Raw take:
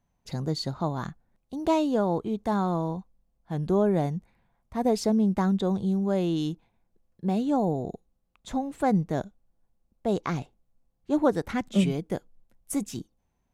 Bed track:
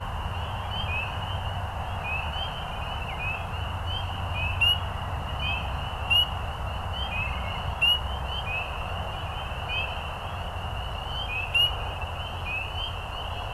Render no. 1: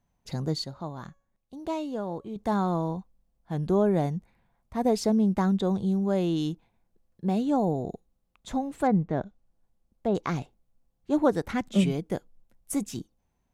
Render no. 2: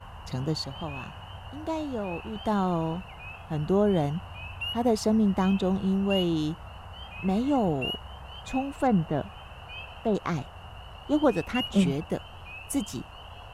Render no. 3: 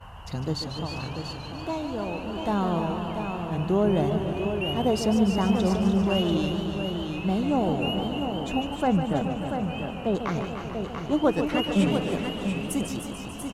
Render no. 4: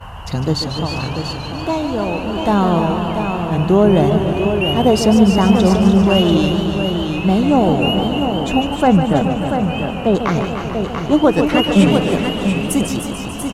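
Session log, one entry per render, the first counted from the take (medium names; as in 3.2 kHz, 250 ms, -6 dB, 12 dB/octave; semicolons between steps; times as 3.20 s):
0.64–2.36 s: feedback comb 560 Hz, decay 0.51 s; 8.86–10.15 s: low-pass that closes with the level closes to 2.2 kHz, closed at -22.5 dBFS
add bed track -11.5 dB
multi-tap echo 317/689 ms -10/-7 dB; modulated delay 146 ms, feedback 78%, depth 151 cents, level -9 dB
trim +11 dB; peak limiter -1 dBFS, peak gain reduction 2.5 dB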